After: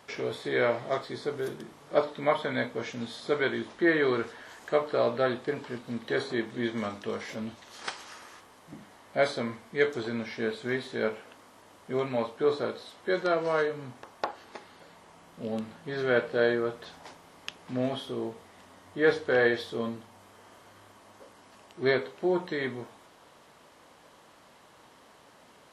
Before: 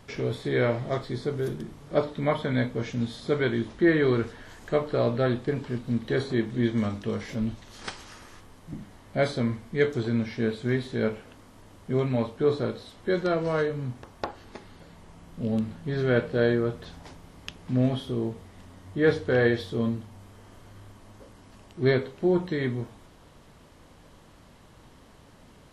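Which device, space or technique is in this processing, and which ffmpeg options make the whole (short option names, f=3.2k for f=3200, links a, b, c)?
filter by subtraction: -filter_complex "[0:a]asplit=2[a][b];[b]lowpass=800,volume=-1[c];[a][c]amix=inputs=2:normalize=0"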